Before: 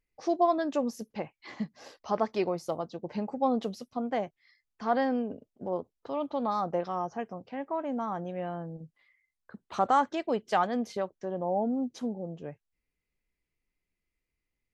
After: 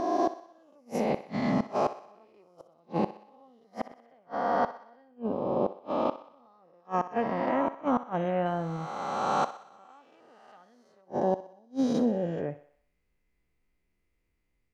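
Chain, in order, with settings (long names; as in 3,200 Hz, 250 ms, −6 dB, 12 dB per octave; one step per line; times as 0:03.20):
peak hold with a rise ahead of every peak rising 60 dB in 2.31 s
high-shelf EQ 2,300 Hz −7 dB, from 0:08.46 +3.5 dB, from 0:11.01 −10 dB
automatic gain control gain up to 5.5 dB
gate with flip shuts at −15 dBFS, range −38 dB
feedback echo with a high-pass in the loop 62 ms, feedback 55%, high-pass 370 Hz, level −13.5 dB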